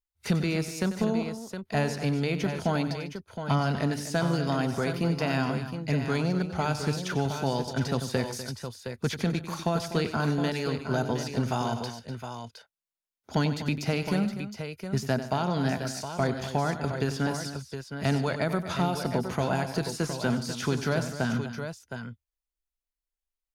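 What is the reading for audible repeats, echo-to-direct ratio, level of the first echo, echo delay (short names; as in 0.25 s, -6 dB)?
4, -5.5 dB, -12.0 dB, 94 ms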